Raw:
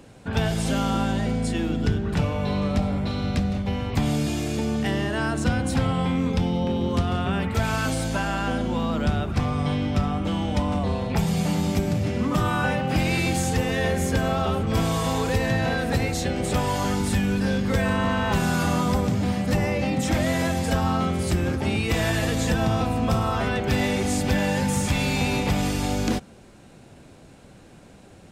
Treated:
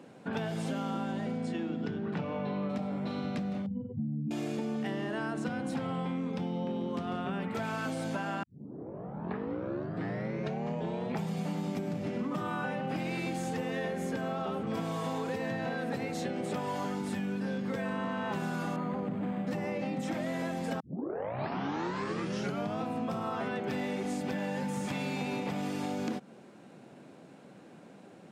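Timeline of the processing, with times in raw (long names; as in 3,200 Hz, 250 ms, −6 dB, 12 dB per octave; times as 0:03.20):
0:01.37–0:02.68: low-pass filter 8,100 Hz → 3,100 Hz
0:03.66–0:04.31: expanding power law on the bin magnitudes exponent 3.5
0:08.43: tape start 2.79 s
0:18.76–0:19.47: linearly interpolated sample-rate reduction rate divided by 8×
0:20.80: tape start 2.02 s
whole clip: high-pass filter 160 Hz 24 dB per octave; high-shelf EQ 3,100 Hz −10.5 dB; downward compressor, threshold −29 dBFS; level −2 dB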